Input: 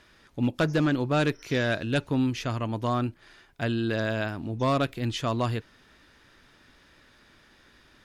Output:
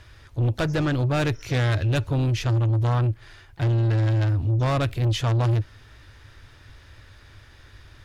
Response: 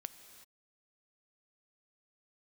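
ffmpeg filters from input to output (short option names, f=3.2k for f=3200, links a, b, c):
-filter_complex "[0:a]asplit=2[a][b];[b]asetrate=52444,aresample=44100,atempo=0.840896,volume=-16dB[c];[a][c]amix=inputs=2:normalize=0,lowshelf=f=140:t=q:w=3:g=10,asoftclip=type=tanh:threshold=-23dB,volume=4.5dB"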